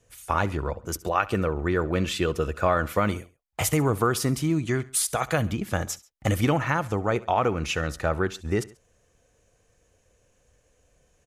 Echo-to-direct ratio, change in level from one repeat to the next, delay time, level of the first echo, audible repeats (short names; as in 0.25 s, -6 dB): -19.5 dB, -5.5 dB, 68 ms, -20.5 dB, 2